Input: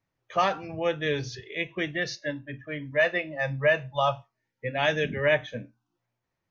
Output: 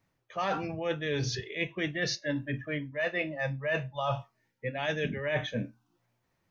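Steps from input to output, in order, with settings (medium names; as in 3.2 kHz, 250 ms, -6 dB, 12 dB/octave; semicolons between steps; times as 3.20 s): peaking EQ 200 Hz +2.5 dB; reverse; compression 10:1, threshold -34 dBFS, peak gain reduction 17.5 dB; reverse; trim +6 dB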